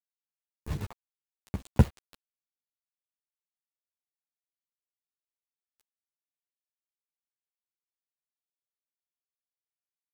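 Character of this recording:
a quantiser's noise floor 6 bits, dither none
chopped level 6.2 Hz, depth 65%, duty 55%
a shimmering, thickened sound

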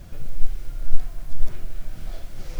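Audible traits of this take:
background noise floor −38 dBFS
spectral slope −5.0 dB per octave

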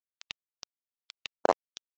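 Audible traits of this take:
a quantiser's noise floor 6 bits, dither none
AAC

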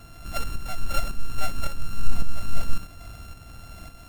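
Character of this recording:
a buzz of ramps at a fixed pitch in blocks of 32 samples
tremolo saw up 1.8 Hz, depth 50%
MP3

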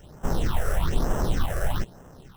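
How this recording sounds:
aliases and images of a low sample rate 2,300 Hz, jitter 0%
phaser sweep stages 6, 1.1 Hz, lowest notch 240–4,000 Hz

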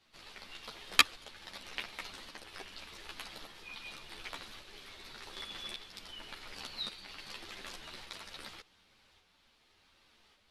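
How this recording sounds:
tremolo saw up 0.87 Hz, depth 40%
a shimmering, thickened sound

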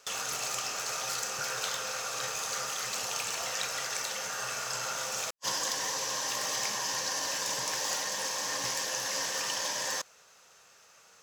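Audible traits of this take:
background noise floor −59 dBFS
spectral slope −1.0 dB per octave

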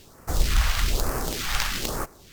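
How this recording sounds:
aliases and images of a low sample rate 10,000 Hz, jitter 20%
phaser sweep stages 2, 1.1 Hz, lowest notch 330–3,300 Hz
SBC

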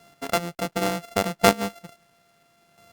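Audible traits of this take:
a buzz of ramps at a fixed pitch in blocks of 64 samples
chopped level 0.72 Hz, depth 60%, duty 10%
a quantiser's noise floor 12 bits, dither none
Opus

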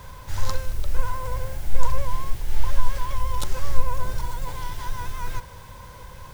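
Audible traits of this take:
background noise floor −43 dBFS
spectral slope −4.5 dB per octave

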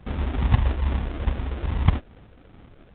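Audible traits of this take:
phaser sweep stages 12, 2.4 Hz, lowest notch 150–1,100 Hz
aliases and images of a low sample rate 1,000 Hz, jitter 20%
A-law companding

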